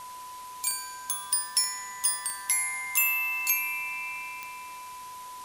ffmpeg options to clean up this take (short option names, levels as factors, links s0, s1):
-af "adeclick=t=4,bandreject=f=1000:w=30,afftdn=nr=30:nf=-42"